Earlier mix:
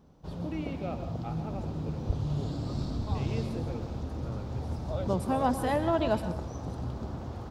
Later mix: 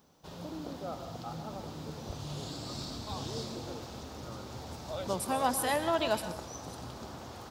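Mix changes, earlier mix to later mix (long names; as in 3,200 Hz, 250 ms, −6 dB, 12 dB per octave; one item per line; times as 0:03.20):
first voice: add Butterworth low-pass 1,500 Hz 96 dB per octave
master: add spectral tilt +3.5 dB per octave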